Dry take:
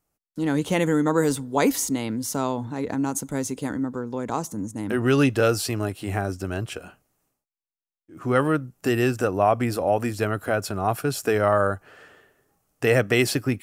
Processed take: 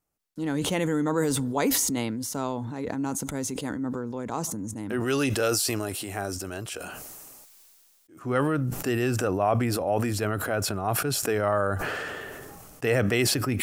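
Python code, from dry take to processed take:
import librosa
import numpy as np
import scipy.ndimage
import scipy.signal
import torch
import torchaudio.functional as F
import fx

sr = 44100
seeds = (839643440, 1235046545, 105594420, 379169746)

y = fx.bass_treble(x, sr, bass_db=-7, treble_db=8, at=(5.0, 8.22))
y = fx.sustainer(y, sr, db_per_s=22.0)
y = y * librosa.db_to_amplitude(-5.0)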